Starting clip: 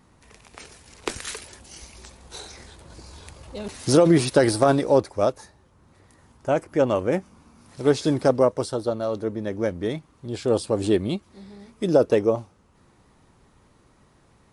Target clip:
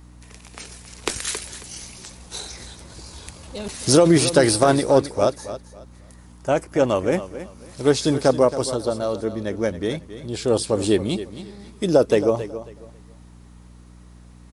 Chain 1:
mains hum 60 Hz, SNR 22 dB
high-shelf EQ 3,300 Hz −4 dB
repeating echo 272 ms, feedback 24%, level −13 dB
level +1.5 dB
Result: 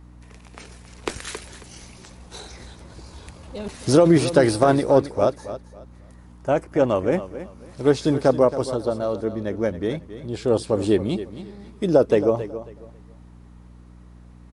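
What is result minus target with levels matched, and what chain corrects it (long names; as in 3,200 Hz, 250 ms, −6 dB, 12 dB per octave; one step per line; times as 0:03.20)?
8,000 Hz band −9.5 dB
mains hum 60 Hz, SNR 22 dB
high-shelf EQ 3,300 Hz +7.5 dB
repeating echo 272 ms, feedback 24%, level −13 dB
level +1.5 dB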